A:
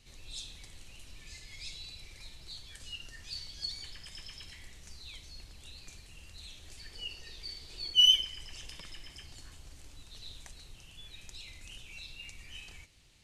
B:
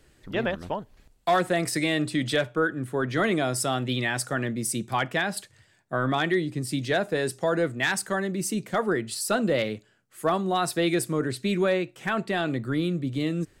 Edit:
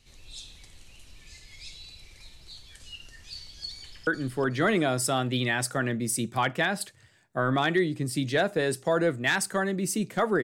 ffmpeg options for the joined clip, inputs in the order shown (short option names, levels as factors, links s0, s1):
-filter_complex "[0:a]apad=whole_dur=10.43,atrim=end=10.43,atrim=end=4.072[s0];[1:a]atrim=start=2.628:end=8.99[s1];[s0][s1]acrossfade=d=0.004:c1=hsin:c2=hsin,asplit=2[s2][s3];[s3]afade=t=in:st=3.76:d=0.01,afade=t=out:st=4.07:d=0.01,aecho=0:1:370|740|1110|1480:0.595662|0.208482|0.0729686|0.025539[s4];[s2][s4]amix=inputs=2:normalize=0"